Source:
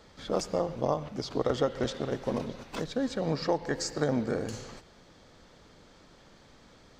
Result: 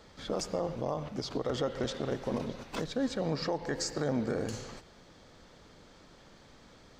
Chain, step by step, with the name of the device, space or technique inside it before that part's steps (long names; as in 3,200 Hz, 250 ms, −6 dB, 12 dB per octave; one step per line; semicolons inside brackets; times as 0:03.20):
clipper into limiter (hard clipping −15 dBFS, distortion −43 dB; brickwall limiter −22 dBFS, peak gain reduction 7 dB)